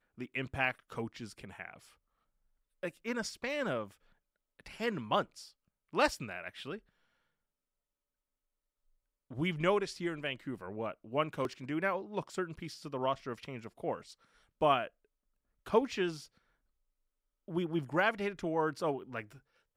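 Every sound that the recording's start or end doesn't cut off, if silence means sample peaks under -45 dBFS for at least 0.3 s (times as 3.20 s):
2.83–3.91 s
4.60–5.48 s
5.93–6.78 s
9.31–14.13 s
14.61–14.88 s
15.66–16.24 s
17.48–19.31 s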